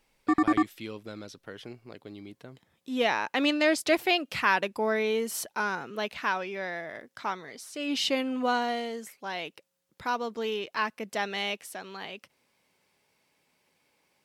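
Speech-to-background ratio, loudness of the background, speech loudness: -3.0 dB, -27.0 LUFS, -30.0 LUFS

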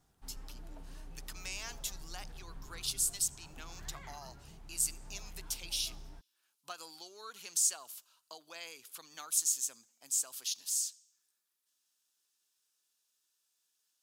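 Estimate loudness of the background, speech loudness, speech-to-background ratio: -53.5 LUFS, -34.5 LUFS, 19.0 dB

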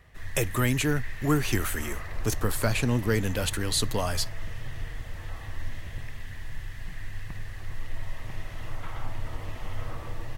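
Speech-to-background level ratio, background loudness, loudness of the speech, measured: 12.0 dB, -40.0 LUFS, -28.0 LUFS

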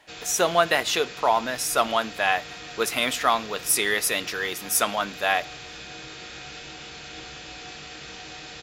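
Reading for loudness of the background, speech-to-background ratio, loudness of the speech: -38.0 LUFS, 14.5 dB, -23.5 LUFS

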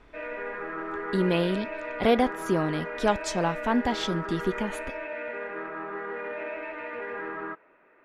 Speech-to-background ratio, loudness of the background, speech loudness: 7.5 dB, -35.0 LUFS, -27.5 LUFS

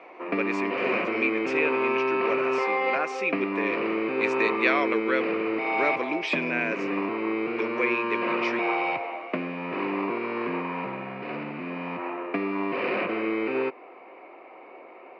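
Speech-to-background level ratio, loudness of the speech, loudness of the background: -1.5 dB, -29.5 LUFS, -28.0 LUFS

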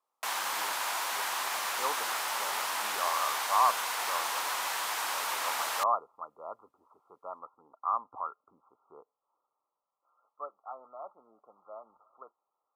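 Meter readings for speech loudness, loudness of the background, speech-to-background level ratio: -35.0 LUFS, -31.5 LUFS, -3.5 dB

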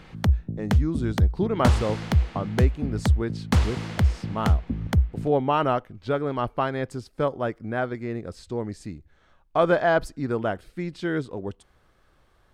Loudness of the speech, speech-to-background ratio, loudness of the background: -28.0 LUFS, -3.0 dB, -25.0 LUFS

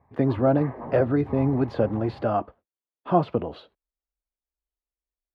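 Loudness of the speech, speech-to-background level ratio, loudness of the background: -24.5 LUFS, 15.0 dB, -39.5 LUFS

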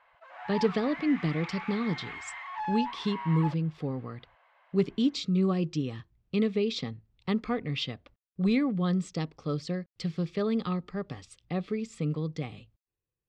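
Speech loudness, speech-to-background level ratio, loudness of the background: -30.5 LUFS, 8.0 dB, -38.5 LUFS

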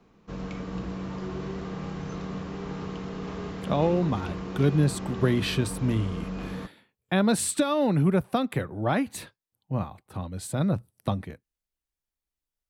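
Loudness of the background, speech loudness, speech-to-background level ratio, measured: -35.5 LUFS, -27.0 LUFS, 8.5 dB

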